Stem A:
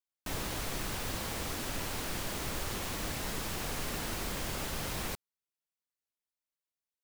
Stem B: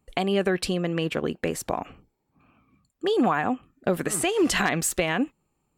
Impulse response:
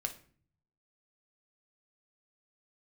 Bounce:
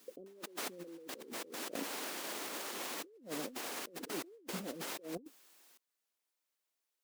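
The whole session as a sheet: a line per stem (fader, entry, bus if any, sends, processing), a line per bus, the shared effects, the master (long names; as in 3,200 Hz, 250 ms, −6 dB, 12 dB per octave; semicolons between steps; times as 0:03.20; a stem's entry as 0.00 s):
+2.5 dB, 0.00 s, no send, brickwall limiter −28.5 dBFS, peak gain reduction 5 dB; expander for the loud parts 1.5 to 1, over −48 dBFS; automatic ducking −13 dB, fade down 0.85 s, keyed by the second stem
−2.0 dB, 0.00 s, no send, reverb reduction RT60 1.6 s; elliptic low-pass filter 530 Hz; bit-depth reduction 12 bits, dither triangular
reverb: not used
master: high-pass filter 270 Hz 24 dB per octave; compressor whose output falls as the input rises −48 dBFS, ratio −1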